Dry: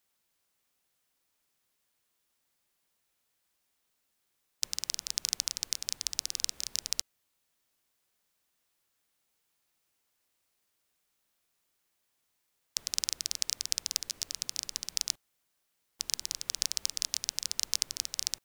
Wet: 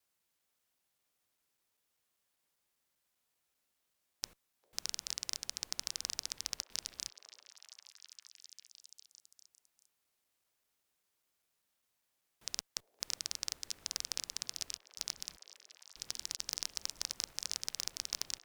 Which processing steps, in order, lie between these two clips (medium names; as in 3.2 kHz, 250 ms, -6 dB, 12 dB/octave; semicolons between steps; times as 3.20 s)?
slices played last to first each 197 ms, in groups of 3; repeats whose band climbs or falls 399 ms, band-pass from 530 Hz, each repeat 0.7 oct, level -6 dB; one-sided clip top -16 dBFS, bottom -10 dBFS; trim -4 dB